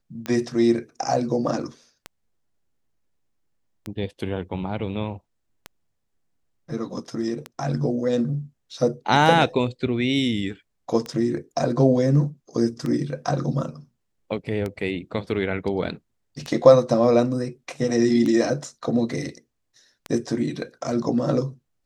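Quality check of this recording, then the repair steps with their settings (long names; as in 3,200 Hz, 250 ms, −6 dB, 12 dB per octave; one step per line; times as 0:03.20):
scratch tick 33 1/3 rpm −15 dBFS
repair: click removal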